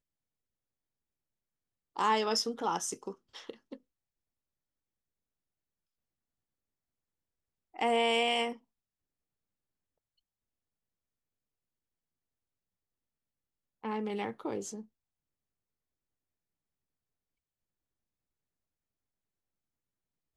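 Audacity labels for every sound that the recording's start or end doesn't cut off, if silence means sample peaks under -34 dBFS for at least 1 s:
1.970000	3.740000	sound
7.790000	8.520000	sound
13.850000	14.750000	sound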